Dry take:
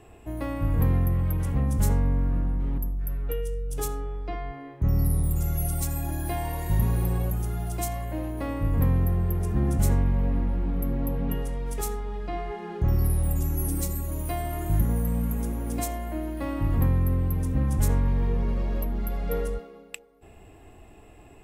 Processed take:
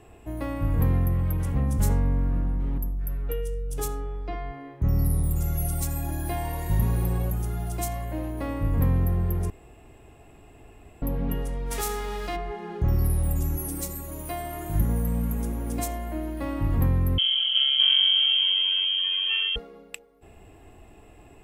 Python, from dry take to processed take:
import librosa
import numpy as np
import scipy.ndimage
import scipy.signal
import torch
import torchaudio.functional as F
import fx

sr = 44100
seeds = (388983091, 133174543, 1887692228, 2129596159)

y = fx.envelope_flatten(x, sr, power=0.6, at=(11.7, 12.35), fade=0.02)
y = fx.low_shelf(y, sr, hz=160.0, db=-10.0, at=(13.57, 14.75))
y = fx.freq_invert(y, sr, carrier_hz=3200, at=(17.18, 19.56))
y = fx.edit(y, sr, fx.room_tone_fill(start_s=9.5, length_s=1.52), tone=tone)